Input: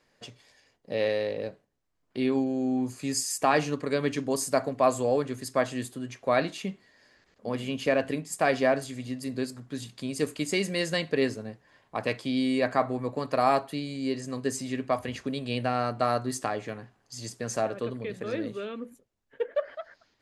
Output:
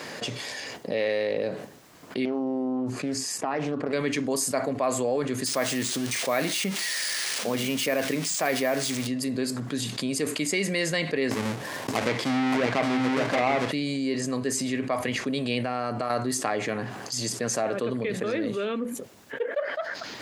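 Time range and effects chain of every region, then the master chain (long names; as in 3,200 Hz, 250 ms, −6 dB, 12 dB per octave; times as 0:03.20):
0:02.25–0:03.93: low-pass filter 1,100 Hz 6 dB per octave + downward compressor 4 to 1, threshold −30 dBFS + highs frequency-modulated by the lows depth 0.39 ms
0:05.46–0:09.07: spike at every zero crossing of −24.5 dBFS + bad sample-rate conversion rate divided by 3×, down filtered, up hold
0:11.31–0:13.72: each half-wave held at its own peak + treble cut that deepens with the level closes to 2,400 Hz, closed at −16.5 dBFS + single-tap delay 572 ms −3 dB
0:15.63–0:16.10: notch filter 3,800 Hz, Q 10 + downward compressor 4 to 1, threshold −34 dBFS
whole clip: high-pass filter 150 Hz 12 dB per octave; dynamic equaliser 2,100 Hz, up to +6 dB, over −50 dBFS, Q 4.7; envelope flattener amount 70%; level −6 dB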